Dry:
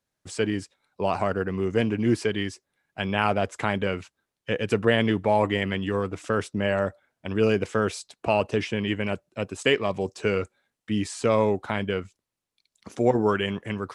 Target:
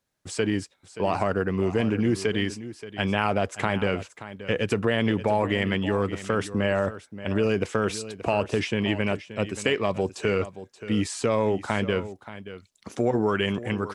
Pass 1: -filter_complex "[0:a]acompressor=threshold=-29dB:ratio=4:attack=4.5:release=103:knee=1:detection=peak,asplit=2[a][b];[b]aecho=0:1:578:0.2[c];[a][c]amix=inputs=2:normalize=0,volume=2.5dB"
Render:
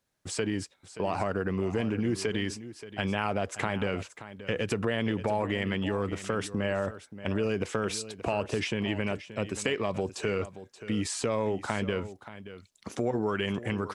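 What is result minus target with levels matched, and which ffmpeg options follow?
compressor: peak gain reduction +5.5 dB
-filter_complex "[0:a]acompressor=threshold=-21.5dB:ratio=4:attack=4.5:release=103:knee=1:detection=peak,asplit=2[a][b];[b]aecho=0:1:578:0.2[c];[a][c]amix=inputs=2:normalize=0,volume=2.5dB"

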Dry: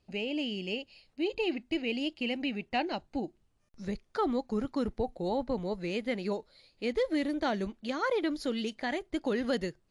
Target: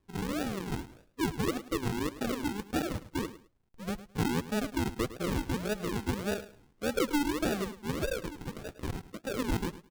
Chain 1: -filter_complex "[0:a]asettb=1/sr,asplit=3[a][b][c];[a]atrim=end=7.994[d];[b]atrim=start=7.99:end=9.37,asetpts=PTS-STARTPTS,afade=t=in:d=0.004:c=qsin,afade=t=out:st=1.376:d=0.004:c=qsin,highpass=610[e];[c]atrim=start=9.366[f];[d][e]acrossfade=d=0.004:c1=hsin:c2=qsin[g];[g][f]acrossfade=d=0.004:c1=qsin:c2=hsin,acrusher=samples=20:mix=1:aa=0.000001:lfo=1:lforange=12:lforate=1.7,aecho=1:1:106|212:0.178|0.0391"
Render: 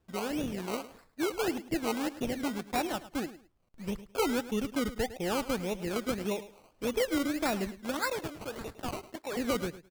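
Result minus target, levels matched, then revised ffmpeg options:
decimation with a swept rate: distortion -18 dB
-filter_complex "[0:a]asettb=1/sr,asplit=3[a][b][c];[a]atrim=end=7.994[d];[b]atrim=start=7.99:end=9.37,asetpts=PTS-STARTPTS,afade=t=in:d=0.004:c=qsin,afade=t=out:st=1.376:d=0.004:c=qsin,highpass=610[e];[c]atrim=start=9.366[f];[d][e]acrossfade=d=0.004:c1=hsin:c2=qsin[g];[g][f]acrossfade=d=0.004:c1=qsin:c2=hsin,acrusher=samples=59:mix=1:aa=0.000001:lfo=1:lforange=35.4:lforate=1.7,aecho=1:1:106|212:0.178|0.0391"

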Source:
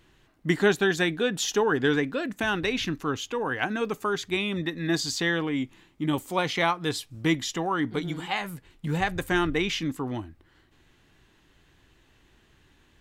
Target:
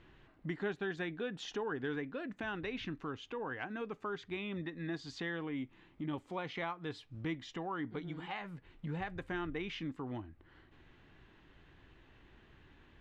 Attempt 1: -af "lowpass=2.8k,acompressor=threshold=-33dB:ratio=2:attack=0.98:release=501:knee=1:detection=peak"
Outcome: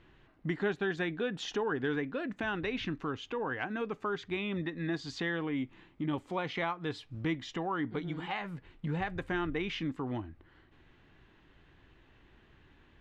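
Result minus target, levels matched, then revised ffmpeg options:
compressor: peak gain reduction -5.5 dB
-af "lowpass=2.8k,acompressor=threshold=-44dB:ratio=2:attack=0.98:release=501:knee=1:detection=peak"

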